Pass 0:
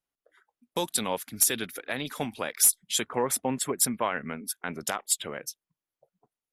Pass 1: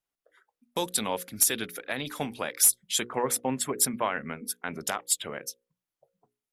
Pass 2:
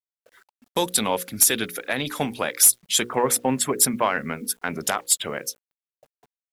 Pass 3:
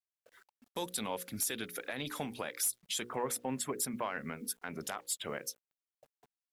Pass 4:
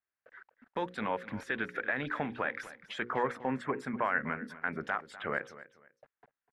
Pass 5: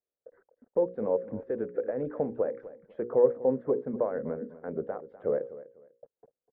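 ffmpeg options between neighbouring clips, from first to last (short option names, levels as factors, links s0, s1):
-af "bandreject=f=60:t=h:w=6,bandreject=f=120:t=h:w=6,bandreject=f=180:t=h:w=6,bandreject=f=240:t=h:w=6,bandreject=f=300:t=h:w=6,bandreject=f=360:t=h:w=6,bandreject=f=420:t=h:w=6,bandreject=f=480:t=h:w=6,bandreject=f=540:t=h:w=6"
-af "asoftclip=type=tanh:threshold=0.237,acrusher=bits=10:mix=0:aa=0.000001,volume=2.24"
-af "alimiter=limit=0.126:level=0:latency=1:release=239,volume=0.447"
-af "lowpass=f=1700:t=q:w=2.7,aecho=1:1:248|496:0.15|0.0374,volume=1.41"
-af "lowpass=f=500:t=q:w=4.9"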